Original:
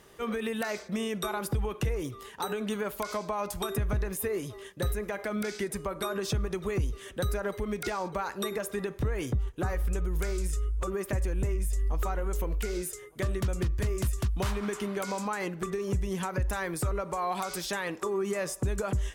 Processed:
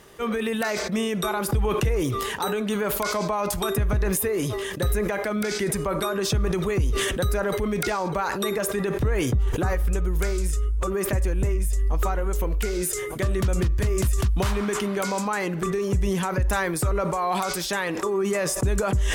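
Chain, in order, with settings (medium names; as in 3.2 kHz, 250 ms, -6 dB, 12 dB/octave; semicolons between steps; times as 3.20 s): decay stretcher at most 22 dB/s; trim +5.5 dB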